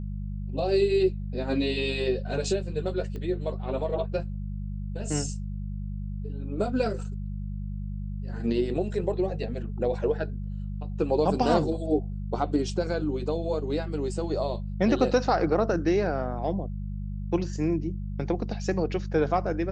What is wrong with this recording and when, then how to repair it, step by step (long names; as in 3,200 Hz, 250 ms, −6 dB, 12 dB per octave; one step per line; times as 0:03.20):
mains hum 50 Hz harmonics 4 −33 dBFS
0:03.16: click −26 dBFS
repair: click removal
hum removal 50 Hz, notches 4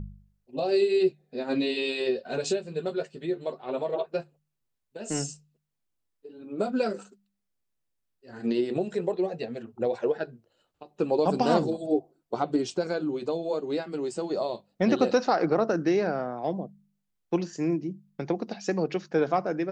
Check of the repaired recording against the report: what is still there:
0:03.16: click